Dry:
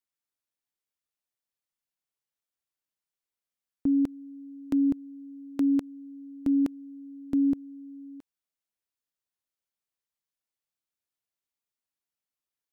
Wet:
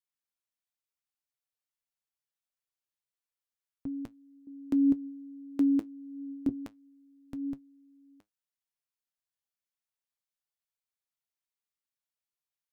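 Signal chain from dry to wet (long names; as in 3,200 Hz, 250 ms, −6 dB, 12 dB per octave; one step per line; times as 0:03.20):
parametric band 310 Hz −9 dB 1.1 octaves, from 0:04.47 +4.5 dB, from 0:06.49 −11.5 dB
flanger 0.8 Hz, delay 7 ms, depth 3.2 ms, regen +61%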